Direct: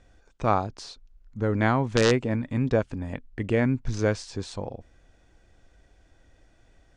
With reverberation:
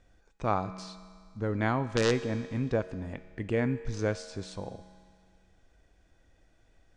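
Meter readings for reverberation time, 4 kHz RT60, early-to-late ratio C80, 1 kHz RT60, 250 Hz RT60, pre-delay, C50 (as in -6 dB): 2.0 s, 2.0 s, 14.0 dB, 2.0 s, 2.0 s, 5 ms, 13.0 dB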